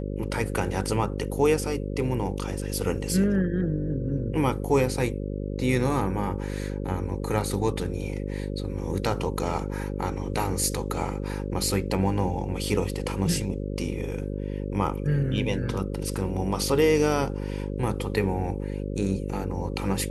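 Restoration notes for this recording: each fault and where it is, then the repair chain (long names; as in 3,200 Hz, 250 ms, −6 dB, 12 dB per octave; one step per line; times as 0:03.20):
mains buzz 50 Hz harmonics 11 −31 dBFS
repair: hum removal 50 Hz, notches 11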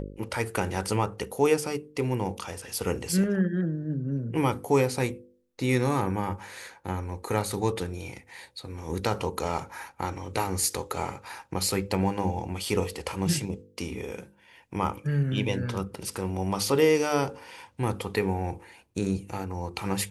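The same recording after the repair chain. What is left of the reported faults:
none of them is left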